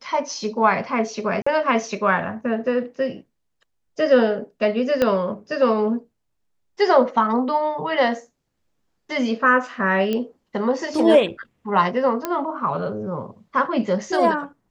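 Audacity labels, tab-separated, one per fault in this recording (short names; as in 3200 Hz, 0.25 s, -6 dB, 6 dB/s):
1.420000	1.470000	gap 45 ms
5.020000	5.020000	pop -7 dBFS
10.130000	10.130000	pop -12 dBFS
12.250000	12.250000	pop -9 dBFS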